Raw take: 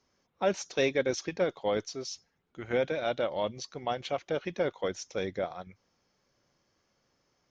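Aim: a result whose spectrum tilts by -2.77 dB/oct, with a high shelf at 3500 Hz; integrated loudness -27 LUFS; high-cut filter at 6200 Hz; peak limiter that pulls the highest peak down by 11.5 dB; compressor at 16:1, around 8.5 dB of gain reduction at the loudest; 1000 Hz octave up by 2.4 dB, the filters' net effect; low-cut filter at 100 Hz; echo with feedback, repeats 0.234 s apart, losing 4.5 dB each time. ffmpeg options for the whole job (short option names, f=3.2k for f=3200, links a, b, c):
-af "highpass=100,lowpass=6.2k,equalizer=f=1k:t=o:g=3,highshelf=f=3.5k:g=8,acompressor=threshold=-29dB:ratio=16,alimiter=level_in=5.5dB:limit=-24dB:level=0:latency=1,volume=-5.5dB,aecho=1:1:234|468|702|936|1170|1404|1638|1872|2106:0.596|0.357|0.214|0.129|0.0772|0.0463|0.0278|0.0167|0.01,volume=12.5dB"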